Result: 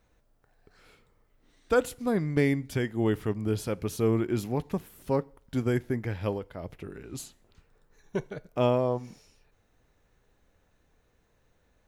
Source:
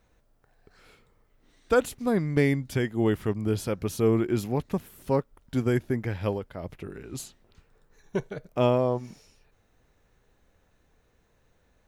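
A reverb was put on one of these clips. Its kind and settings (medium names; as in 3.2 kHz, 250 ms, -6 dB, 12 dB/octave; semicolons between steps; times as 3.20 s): FDN reverb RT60 0.51 s, low-frequency decay 0.75×, high-frequency decay 0.95×, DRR 19.5 dB; trim -2 dB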